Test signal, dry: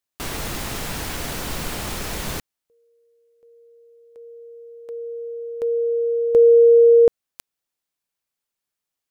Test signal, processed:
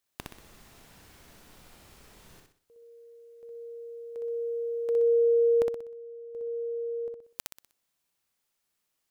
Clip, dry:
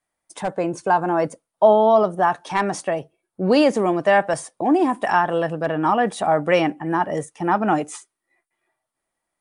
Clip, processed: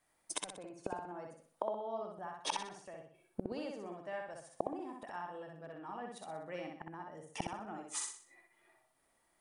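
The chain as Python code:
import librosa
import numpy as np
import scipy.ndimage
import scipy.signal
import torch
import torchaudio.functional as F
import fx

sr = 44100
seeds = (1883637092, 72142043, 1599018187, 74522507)

p1 = fx.gate_flip(x, sr, shuts_db=-23.0, range_db=-31)
p2 = p1 + fx.echo_feedback(p1, sr, ms=62, feedback_pct=40, wet_db=-3, dry=0)
y = p2 * librosa.db_to_amplitude(3.0)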